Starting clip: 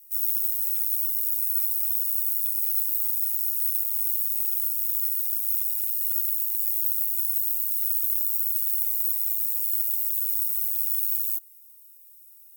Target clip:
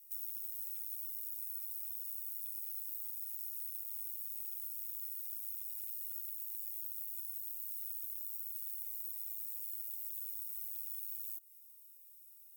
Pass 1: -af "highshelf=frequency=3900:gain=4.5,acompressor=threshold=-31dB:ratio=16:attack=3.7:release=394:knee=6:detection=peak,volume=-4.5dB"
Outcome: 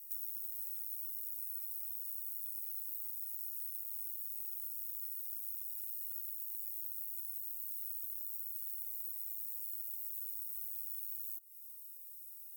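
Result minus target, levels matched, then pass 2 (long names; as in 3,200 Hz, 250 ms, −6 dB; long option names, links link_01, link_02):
4,000 Hz band −2.5 dB
-af "highshelf=frequency=3900:gain=-3,acompressor=threshold=-31dB:ratio=16:attack=3.7:release=394:knee=6:detection=peak,volume=-4.5dB"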